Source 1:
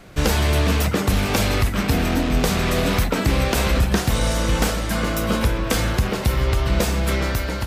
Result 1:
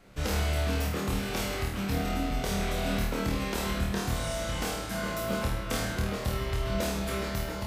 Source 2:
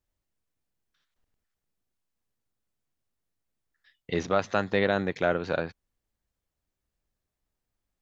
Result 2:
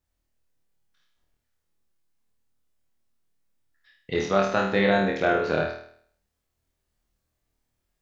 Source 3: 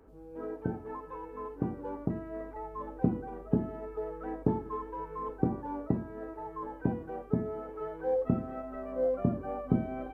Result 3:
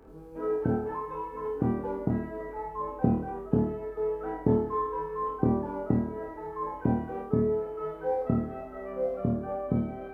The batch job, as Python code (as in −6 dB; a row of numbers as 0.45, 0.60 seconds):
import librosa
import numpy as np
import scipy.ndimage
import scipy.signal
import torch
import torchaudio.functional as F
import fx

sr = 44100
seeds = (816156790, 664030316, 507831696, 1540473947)

p1 = fx.rider(x, sr, range_db=4, speed_s=2.0)
p2 = p1 + fx.room_flutter(p1, sr, wall_m=4.4, rt60_s=0.59, dry=0)
y = p2 * 10.0 ** (-30 / 20.0) / np.sqrt(np.mean(np.square(p2)))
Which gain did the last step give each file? −13.5, +1.0, +0.5 decibels